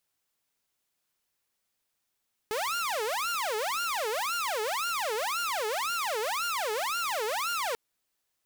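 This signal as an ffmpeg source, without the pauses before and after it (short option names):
-f lavfi -i "aevalsrc='0.0501*(2*mod((916*t-494/(2*PI*1.9)*sin(2*PI*1.9*t)),1)-1)':d=5.24:s=44100"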